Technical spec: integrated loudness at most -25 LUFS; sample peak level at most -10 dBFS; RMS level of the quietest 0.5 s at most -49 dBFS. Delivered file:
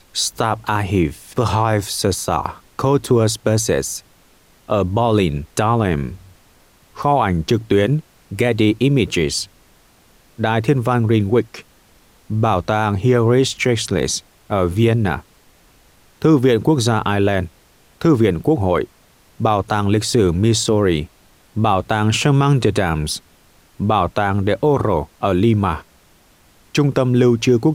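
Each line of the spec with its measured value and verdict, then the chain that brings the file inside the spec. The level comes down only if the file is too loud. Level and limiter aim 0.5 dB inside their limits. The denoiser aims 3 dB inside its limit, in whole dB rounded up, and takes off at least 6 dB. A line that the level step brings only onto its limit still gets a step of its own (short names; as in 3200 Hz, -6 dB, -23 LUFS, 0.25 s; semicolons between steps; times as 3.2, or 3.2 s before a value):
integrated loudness -17.5 LUFS: fail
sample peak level -4.0 dBFS: fail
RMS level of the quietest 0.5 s -52 dBFS: OK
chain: gain -8 dB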